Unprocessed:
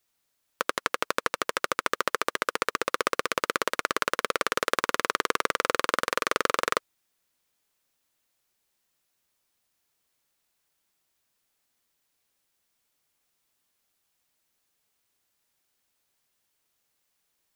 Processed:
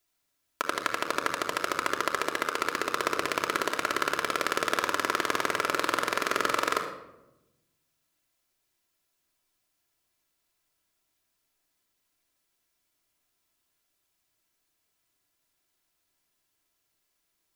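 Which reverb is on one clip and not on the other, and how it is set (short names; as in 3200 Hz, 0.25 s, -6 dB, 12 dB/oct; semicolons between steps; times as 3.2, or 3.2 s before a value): shoebox room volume 3500 m³, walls furnished, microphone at 3 m; gain -3 dB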